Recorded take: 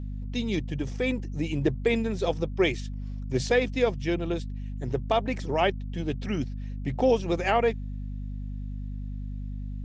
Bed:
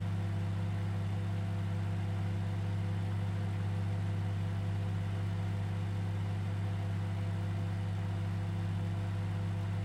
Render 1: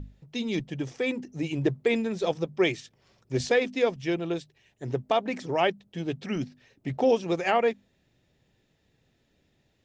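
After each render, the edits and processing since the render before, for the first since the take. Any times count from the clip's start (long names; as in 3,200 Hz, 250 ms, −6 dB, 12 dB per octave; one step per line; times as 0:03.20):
mains-hum notches 50/100/150/200/250 Hz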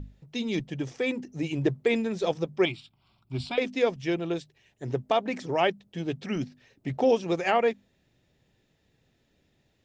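0:02.65–0:03.58: phaser with its sweep stopped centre 1,800 Hz, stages 6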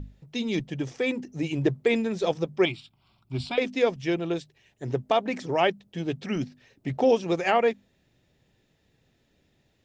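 level +1.5 dB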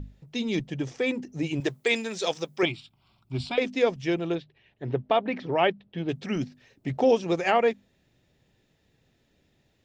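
0:01.60–0:02.63: spectral tilt +3.5 dB per octave
0:04.35–0:06.09: low-pass filter 3,800 Hz 24 dB per octave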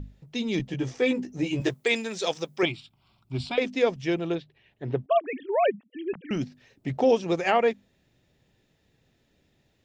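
0:00.58–0:01.74: double-tracking delay 16 ms −3.5 dB
0:05.06–0:06.31: three sine waves on the formant tracks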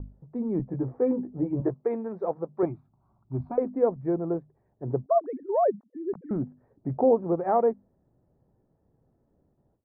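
noise gate with hold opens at −58 dBFS
inverse Chebyshev low-pass filter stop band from 2,800 Hz, stop band 50 dB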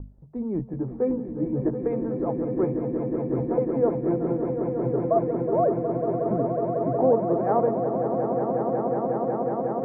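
echo that builds up and dies away 183 ms, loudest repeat 8, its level −8.5 dB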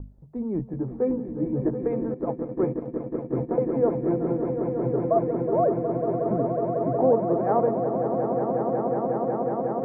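0:02.14–0:03.64: noise gate −27 dBFS, range −12 dB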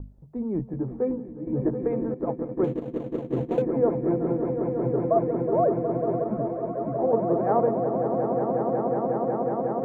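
0:00.91–0:01.47: fade out, to −10.5 dB
0:02.64–0:03.62: running median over 25 samples
0:06.24–0:07.13: string-ensemble chorus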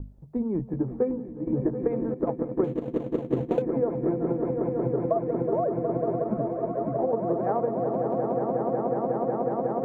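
downward compressor 6 to 1, threshold −23 dBFS, peak gain reduction 7.5 dB
transient designer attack +5 dB, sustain +1 dB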